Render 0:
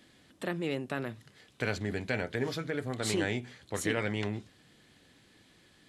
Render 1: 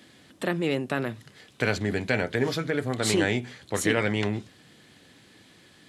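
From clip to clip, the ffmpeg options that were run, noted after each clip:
-af "highpass=79,volume=2.24"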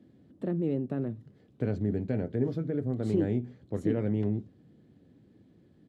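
-af "firequalizer=gain_entry='entry(240,0);entry(950,-18);entry(2200,-25);entry(8800,-30)':delay=0.05:min_phase=1"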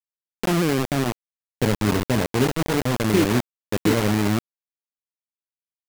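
-af "acrusher=bits=4:mix=0:aa=0.000001,volume=2.51"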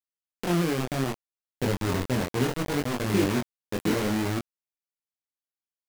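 -af "flanger=delay=20:depth=3.8:speed=0.65,volume=0.75"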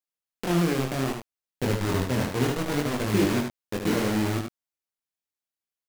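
-af "aecho=1:1:75:0.531"

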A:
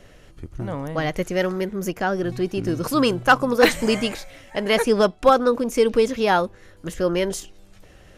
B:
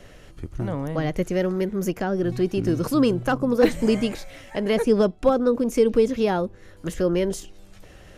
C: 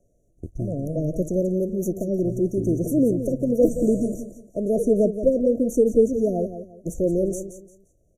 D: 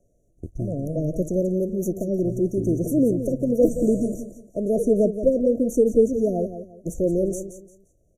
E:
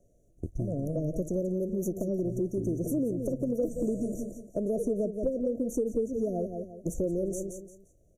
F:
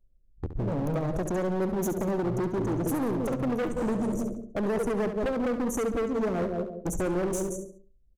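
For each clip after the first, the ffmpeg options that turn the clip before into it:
-filter_complex "[0:a]acrossover=split=500[s0][s1];[s1]acompressor=threshold=0.0112:ratio=2[s2];[s0][s2]amix=inputs=2:normalize=0,volume=1.26"
-filter_complex "[0:a]agate=range=0.126:threshold=0.0224:ratio=16:detection=peak,asplit=2[s0][s1];[s1]aecho=0:1:174|348|522:0.299|0.0836|0.0234[s2];[s0][s2]amix=inputs=2:normalize=0,afftfilt=real='re*(1-between(b*sr/4096,720,5700))':imag='im*(1-between(b*sr/4096,720,5700))':win_size=4096:overlap=0.75"
-af anull
-af "acompressor=threshold=0.0398:ratio=4"
-af "anlmdn=0.0398,volume=42.2,asoftclip=hard,volume=0.0237,aecho=1:1:69|138|207:0.316|0.0917|0.0266,volume=2.11"

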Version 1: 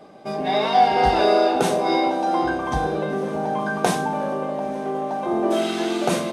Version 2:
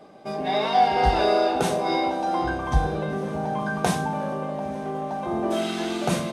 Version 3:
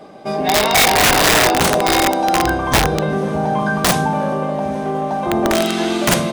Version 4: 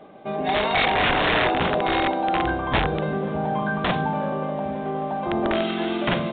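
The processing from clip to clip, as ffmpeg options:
-af "asubboost=boost=5:cutoff=140,volume=0.75"
-af "aeval=exprs='(mod(6.31*val(0)+1,2)-1)/6.31':c=same,volume=2.82"
-af "volume=0.473" -ar 8000 -c:a pcm_mulaw

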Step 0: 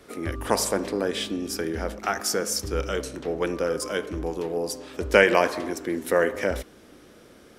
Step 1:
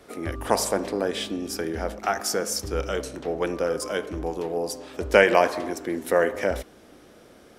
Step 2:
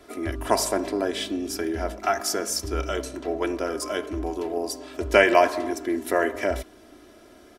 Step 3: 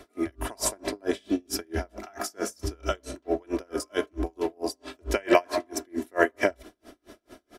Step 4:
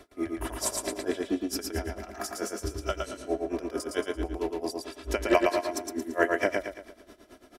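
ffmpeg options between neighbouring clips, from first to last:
-af "equalizer=f=720:t=o:w=0.68:g=5,volume=0.891"
-af "aecho=1:1:3:0.68,volume=0.891"
-af "aeval=exprs='val(0)*pow(10,-37*(0.5-0.5*cos(2*PI*4.5*n/s))/20)':c=same,volume=1.78"
-af "aecho=1:1:113|226|339|452|565:0.668|0.274|0.112|0.0461|0.0189,volume=0.708"

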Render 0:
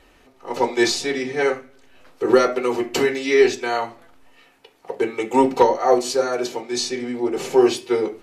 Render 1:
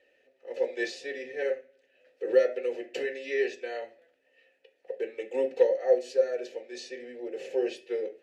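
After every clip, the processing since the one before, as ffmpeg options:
-filter_complex "[0:a]asplit=3[s0][s1][s2];[s0]bandpass=f=530:t=q:w=8,volume=1[s3];[s1]bandpass=f=1840:t=q:w=8,volume=0.501[s4];[s2]bandpass=f=2480:t=q:w=8,volume=0.355[s5];[s3][s4][s5]amix=inputs=3:normalize=0,bass=f=250:g=0,treble=f=4000:g=8,volume=0.841"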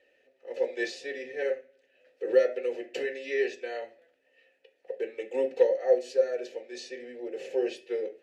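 -af anull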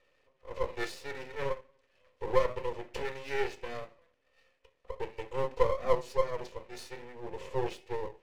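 -af "aeval=exprs='max(val(0),0)':c=same"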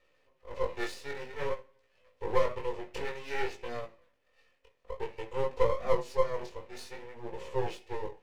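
-af "flanger=delay=17:depth=5.1:speed=0.54,volume=1.41"

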